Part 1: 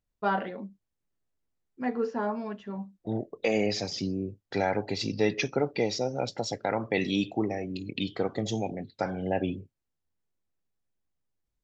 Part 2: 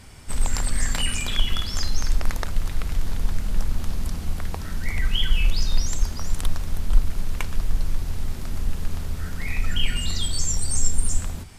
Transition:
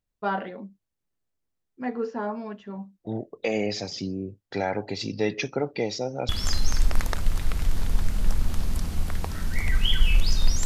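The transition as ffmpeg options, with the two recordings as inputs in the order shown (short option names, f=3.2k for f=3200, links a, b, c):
-filter_complex "[0:a]apad=whole_dur=10.65,atrim=end=10.65,atrim=end=6.292[a];[1:a]atrim=start=1.588:end=5.95[b];[a][b]acrossfade=d=0.004:c1=hsin:c2=hsin"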